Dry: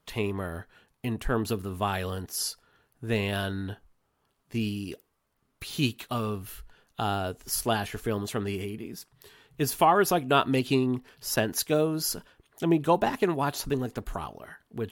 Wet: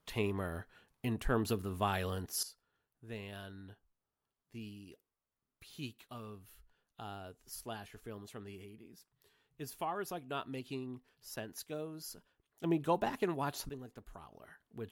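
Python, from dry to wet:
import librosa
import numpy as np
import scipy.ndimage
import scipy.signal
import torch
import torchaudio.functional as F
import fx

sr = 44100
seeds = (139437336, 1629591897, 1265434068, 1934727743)

y = fx.gain(x, sr, db=fx.steps((0.0, -5.0), (2.43, -17.5), (12.64, -9.0), (13.69, -18.0), (14.32, -11.5)))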